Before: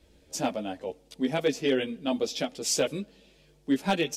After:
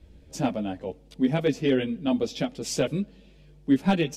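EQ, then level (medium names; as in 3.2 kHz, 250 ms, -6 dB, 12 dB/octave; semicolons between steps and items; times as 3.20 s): tone controls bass +11 dB, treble -6 dB; 0.0 dB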